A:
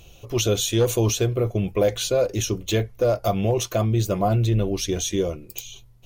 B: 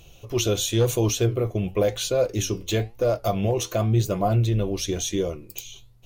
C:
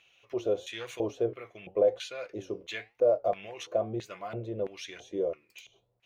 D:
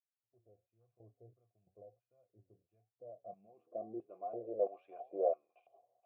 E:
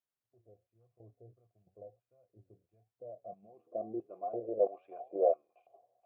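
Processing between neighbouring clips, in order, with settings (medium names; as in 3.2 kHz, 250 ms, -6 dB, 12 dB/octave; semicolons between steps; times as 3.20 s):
flange 0.96 Hz, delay 5.9 ms, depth 6.7 ms, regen +81%; trim +3 dB
LFO band-pass square 1.5 Hz 550–2000 Hz
fade-in on the opening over 1.00 s; vowel filter a; low-pass sweep 110 Hz -> 690 Hz, 2.81–4.86 s; trim +6 dB
treble shelf 2 kHz -10 dB; in parallel at +2.5 dB: level held to a coarse grid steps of 11 dB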